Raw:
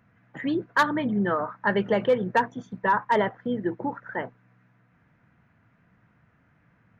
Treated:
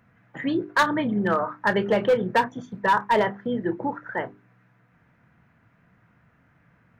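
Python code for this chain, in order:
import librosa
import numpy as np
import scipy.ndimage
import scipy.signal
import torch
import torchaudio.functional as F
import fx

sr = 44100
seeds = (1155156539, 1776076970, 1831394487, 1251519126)

y = fx.hum_notches(x, sr, base_hz=50, count=8)
y = np.clip(y, -10.0 ** (-16.5 / 20.0), 10.0 ** (-16.5 / 20.0))
y = fx.doubler(y, sr, ms=30.0, db=-13.5)
y = y * librosa.db_to_amplitude(2.5)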